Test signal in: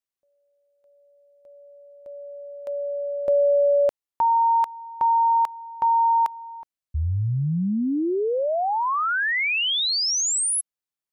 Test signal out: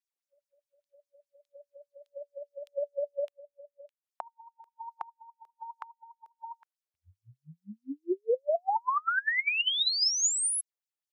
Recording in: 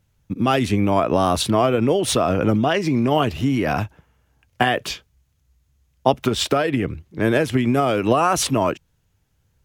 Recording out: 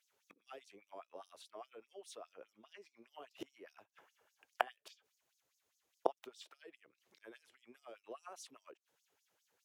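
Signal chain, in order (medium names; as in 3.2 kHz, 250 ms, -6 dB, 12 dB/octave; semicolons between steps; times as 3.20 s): inverted gate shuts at -18 dBFS, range -29 dB; LFO high-pass sine 4.9 Hz 390–6100 Hz; trim -7 dB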